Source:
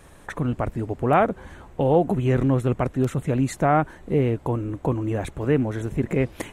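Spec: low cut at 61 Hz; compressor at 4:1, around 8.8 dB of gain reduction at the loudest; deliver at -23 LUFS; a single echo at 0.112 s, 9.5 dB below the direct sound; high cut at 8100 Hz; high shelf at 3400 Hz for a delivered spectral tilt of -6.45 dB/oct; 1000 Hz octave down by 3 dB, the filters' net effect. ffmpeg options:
-af "highpass=61,lowpass=8.1k,equalizer=f=1k:t=o:g=-5,highshelf=f=3.4k:g=4.5,acompressor=threshold=-26dB:ratio=4,aecho=1:1:112:0.335,volume=7.5dB"

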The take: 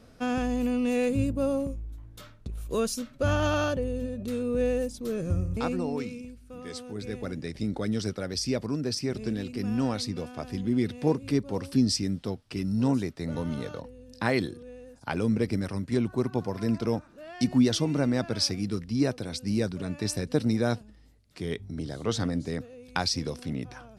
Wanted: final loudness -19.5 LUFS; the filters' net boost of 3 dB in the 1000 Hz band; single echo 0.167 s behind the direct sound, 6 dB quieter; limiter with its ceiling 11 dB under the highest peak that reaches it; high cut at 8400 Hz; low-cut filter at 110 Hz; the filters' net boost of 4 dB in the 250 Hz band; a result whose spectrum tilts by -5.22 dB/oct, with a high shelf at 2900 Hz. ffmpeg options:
-af "highpass=110,lowpass=8.4k,equalizer=f=250:t=o:g=4.5,equalizer=f=1k:t=o:g=3,highshelf=f=2.9k:g=5.5,alimiter=limit=-17dB:level=0:latency=1,aecho=1:1:167:0.501,volume=7.5dB"

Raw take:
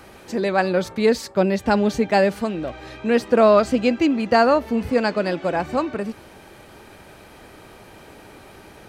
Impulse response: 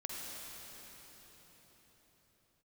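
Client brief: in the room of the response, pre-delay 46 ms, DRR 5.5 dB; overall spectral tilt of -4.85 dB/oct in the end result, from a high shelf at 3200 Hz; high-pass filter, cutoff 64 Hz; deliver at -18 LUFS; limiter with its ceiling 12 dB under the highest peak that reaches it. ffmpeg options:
-filter_complex "[0:a]highpass=64,highshelf=f=3.2k:g=6,alimiter=limit=-15.5dB:level=0:latency=1,asplit=2[a][b];[1:a]atrim=start_sample=2205,adelay=46[c];[b][c]afir=irnorm=-1:irlink=0,volume=-6.5dB[d];[a][d]amix=inputs=2:normalize=0,volume=6.5dB"

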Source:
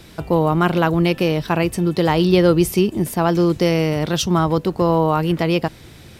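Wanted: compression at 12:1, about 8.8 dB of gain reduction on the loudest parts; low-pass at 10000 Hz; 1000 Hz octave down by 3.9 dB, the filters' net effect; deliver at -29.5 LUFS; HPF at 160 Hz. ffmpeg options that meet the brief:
-af "highpass=160,lowpass=10k,equalizer=f=1k:t=o:g=-5,acompressor=threshold=-19dB:ratio=12,volume=-4.5dB"

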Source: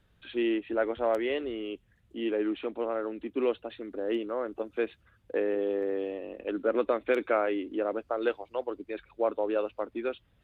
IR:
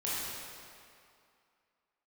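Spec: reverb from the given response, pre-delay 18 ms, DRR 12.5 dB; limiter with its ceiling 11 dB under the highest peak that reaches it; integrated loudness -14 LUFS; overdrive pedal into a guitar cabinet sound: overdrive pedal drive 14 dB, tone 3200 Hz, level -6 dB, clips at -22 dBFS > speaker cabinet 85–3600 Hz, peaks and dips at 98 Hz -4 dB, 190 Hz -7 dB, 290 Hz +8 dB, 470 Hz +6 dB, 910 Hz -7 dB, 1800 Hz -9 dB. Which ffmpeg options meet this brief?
-filter_complex "[0:a]alimiter=level_in=0.5dB:limit=-24dB:level=0:latency=1,volume=-0.5dB,asplit=2[a][b];[1:a]atrim=start_sample=2205,adelay=18[c];[b][c]afir=irnorm=-1:irlink=0,volume=-18.5dB[d];[a][d]amix=inputs=2:normalize=0,asplit=2[e][f];[f]highpass=f=720:p=1,volume=14dB,asoftclip=type=tanh:threshold=-22dB[g];[e][g]amix=inputs=2:normalize=0,lowpass=f=3.2k:p=1,volume=-6dB,highpass=85,equalizer=f=98:t=q:w=4:g=-4,equalizer=f=190:t=q:w=4:g=-7,equalizer=f=290:t=q:w=4:g=8,equalizer=f=470:t=q:w=4:g=6,equalizer=f=910:t=q:w=4:g=-7,equalizer=f=1.8k:t=q:w=4:g=-9,lowpass=f=3.6k:w=0.5412,lowpass=f=3.6k:w=1.3066,volume=15.5dB"

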